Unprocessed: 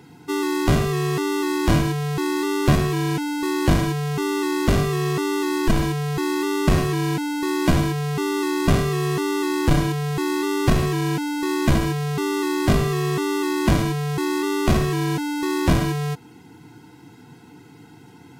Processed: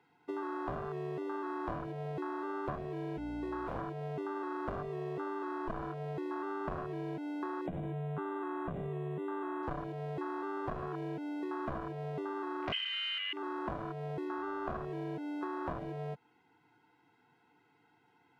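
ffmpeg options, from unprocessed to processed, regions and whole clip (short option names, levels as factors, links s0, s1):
-filter_complex "[0:a]asettb=1/sr,asplit=3[s0][s1][s2];[s0]atrim=end=3.174[s3];[s1]atrim=start=3.17:end=3.76,asetpts=PTS-STARTPTS,afade=t=in:d=0.004:c=qsin,afade=t=out:st=0.586:d=0.004:c=qsin,equalizer=f=13000:w=5.3:g=-13,aeval=exprs='val(0)+0.0355*(sin(2*PI*60*n/s)+sin(2*PI*2*60*n/s)/2+sin(2*PI*3*60*n/s)/3+sin(2*PI*4*60*n/s)/4+sin(2*PI*5*60*n/s)/5)':c=same,aeval=exprs='0.141*(abs(mod(val(0)/0.141+3,4)-2)-1)':c=same[s4];[s2]atrim=start=3.756[s5];[s3][s4]acrossfade=d=0.004:c1=hsin:c2=qsin[s6];[s6][s5]acrossfade=d=0.004:c1=qsin:c2=hsin,asettb=1/sr,asplit=3[s7][s8][s9];[s7]atrim=end=7.664[s10];[s8]atrim=start=7.66:end=9.63,asetpts=PTS-STARTPTS,afade=t=in:d=0.004:c=qsin,afade=t=out:st=1.966:d=0.004:c=qsin,equalizer=f=170:w=2.1:g=10,acompressor=threshold=0.178:ratio=4:attack=3.2:release=140:knee=1:detection=peak,asuperstop=centerf=5200:order=12:qfactor=1.7[s11];[s9]atrim=start=9.626[s12];[s10][s11]acrossfade=d=0.004:c1=hsin:c2=qsin[s13];[s13][s12]acrossfade=d=0.004:c1=qsin:c2=hsin,asettb=1/sr,asplit=3[s14][s15][s16];[s14]atrim=end=12.724[s17];[s15]atrim=start=12.72:end=13.33,asetpts=PTS-STARTPTS,afade=t=in:d=0.004:c=qsin,afade=t=out:st=0.606:d=0.004:c=qsin,lowpass=f=2700:t=q:w=0.5098,lowpass=f=2700:t=q:w=0.6013,lowpass=f=2700:t=q:w=0.9,lowpass=f=2700:t=q:w=2.563,afreqshift=-3200,aecho=1:1:2:0.66,atrim=end_sample=26901[s18];[s16]atrim=start=13.326[s19];[s17][s18]acrossfade=d=0.004:c1=hsin:c2=qsin[s20];[s20][s19]acrossfade=d=0.004:c1=qsin:c2=hsin,asettb=1/sr,asplit=3[s21][s22][s23];[s21]atrim=end=14.274[s24];[s22]atrim=start=14.27:end=14.77,asetpts=PTS-STARTPTS,afade=t=in:d=0.004:c=qsin,afade=t=out:st=0.496:d=0.004:c=qsin,equalizer=f=1400:t=o:w=0.25:g=5,bandreject=f=7900:w=8.1,aeval=exprs='val(0)+0.00631*(sin(2*PI*60*n/s)+sin(2*PI*2*60*n/s)/2+sin(2*PI*3*60*n/s)/3+sin(2*PI*4*60*n/s)/4+sin(2*PI*5*60*n/s)/5)':c=same[s25];[s23]atrim=start=14.766[s26];[s24][s25]acrossfade=d=0.004:c1=hsin:c2=qsin[s27];[s27][s26]acrossfade=d=0.004:c1=qsin:c2=hsin,afwtdn=0.0708,acrossover=split=490 3300:gain=0.178 1 0.126[s28][s29][s30];[s28][s29][s30]amix=inputs=3:normalize=0,acompressor=threshold=0.0141:ratio=5,volume=1.12"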